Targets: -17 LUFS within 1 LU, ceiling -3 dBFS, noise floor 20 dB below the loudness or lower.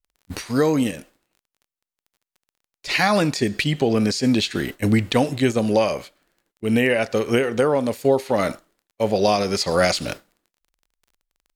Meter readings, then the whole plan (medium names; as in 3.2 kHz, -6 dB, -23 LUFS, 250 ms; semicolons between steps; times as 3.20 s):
tick rate 21 per s; loudness -21.0 LUFS; peak level -5.5 dBFS; loudness target -17.0 LUFS
-> de-click; trim +4 dB; peak limiter -3 dBFS